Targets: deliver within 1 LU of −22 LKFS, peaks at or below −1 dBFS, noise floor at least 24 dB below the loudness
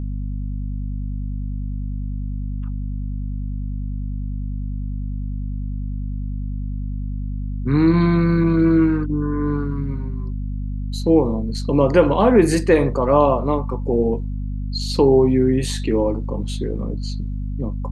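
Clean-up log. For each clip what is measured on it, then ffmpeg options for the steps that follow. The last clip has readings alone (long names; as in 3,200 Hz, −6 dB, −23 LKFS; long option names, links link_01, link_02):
mains hum 50 Hz; hum harmonics up to 250 Hz; level of the hum −23 dBFS; integrated loudness −21.0 LKFS; sample peak −2.5 dBFS; target loudness −22.0 LKFS
→ -af "bandreject=frequency=50:width_type=h:width=6,bandreject=frequency=100:width_type=h:width=6,bandreject=frequency=150:width_type=h:width=6,bandreject=frequency=200:width_type=h:width=6,bandreject=frequency=250:width_type=h:width=6"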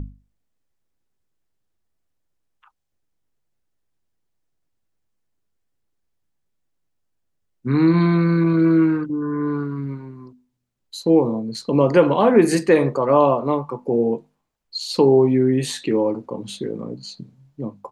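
mains hum none found; integrated loudness −18.5 LKFS; sample peak −3.0 dBFS; target loudness −22.0 LKFS
→ -af "volume=-3.5dB"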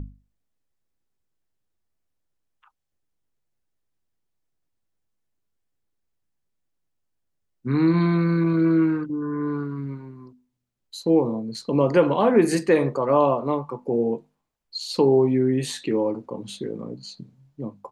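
integrated loudness −22.0 LKFS; sample peak −6.5 dBFS; background noise floor −77 dBFS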